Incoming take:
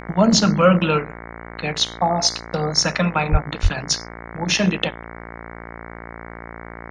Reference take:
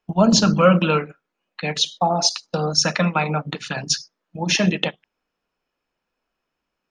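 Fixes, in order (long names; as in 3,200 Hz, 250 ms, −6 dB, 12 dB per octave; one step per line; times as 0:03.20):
hum removal 57.3 Hz, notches 39
high-pass at the plosives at 0:03.31/0:03.62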